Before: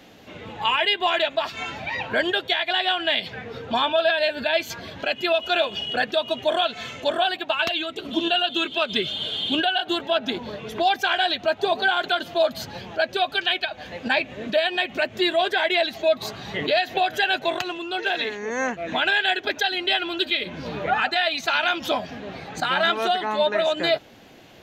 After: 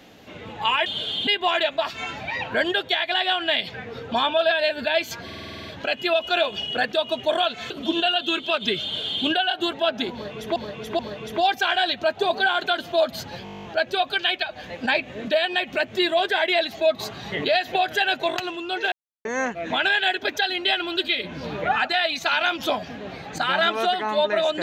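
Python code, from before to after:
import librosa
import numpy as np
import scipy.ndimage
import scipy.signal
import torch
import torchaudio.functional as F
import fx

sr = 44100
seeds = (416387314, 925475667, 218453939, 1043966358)

y = fx.edit(x, sr, fx.stutter(start_s=4.84, slice_s=0.05, count=9),
    fx.cut(start_s=6.89, length_s=1.09),
    fx.duplicate(start_s=9.11, length_s=0.41, to_s=0.86),
    fx.repeat(start_s=10.41, length_s=0.43, count=3),
    fx.stutter(start_s=12.86, slice_s=0.02, count=11),
    fx.silence(start_s=18.14, length_s=0.33), tone=tone)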